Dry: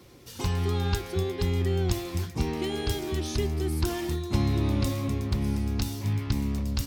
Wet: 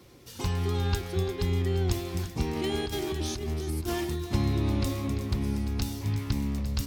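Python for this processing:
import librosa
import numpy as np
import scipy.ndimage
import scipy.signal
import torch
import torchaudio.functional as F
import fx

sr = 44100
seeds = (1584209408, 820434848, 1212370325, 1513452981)

p1 = fx.over_compress(x, sr, threshold_db=-29.0, ratio=-0.5, at=(2.55, 4.03), fade=0.02)
p2 = p1 + fx.echo_single(p1, sr, ms=343, db=-12.5, dry=0)
y = F.gain(torch.from_numpy(p2), -1.5).numpy()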